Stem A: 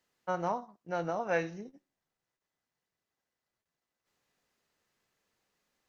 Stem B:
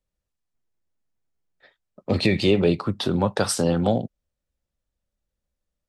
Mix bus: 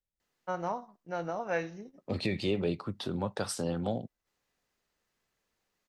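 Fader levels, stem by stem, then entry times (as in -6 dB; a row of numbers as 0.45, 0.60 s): -1.5, -11.5 dB; 0.20, 0.00 s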